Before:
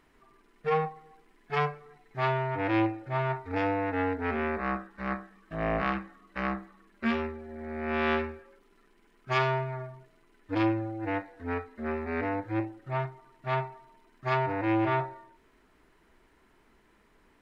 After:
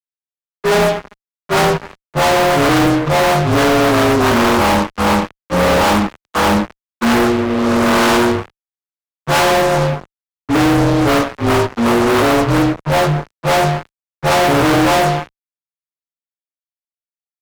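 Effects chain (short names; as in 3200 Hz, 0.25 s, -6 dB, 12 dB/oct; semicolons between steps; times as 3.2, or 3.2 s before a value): inharmonic rescaling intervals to 80%; notches 50/100/150/200/250/300/350/400/450 Hz; fuzz box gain 49 dB, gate -50 dBFS; three-band expander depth 40%; gain +2 dB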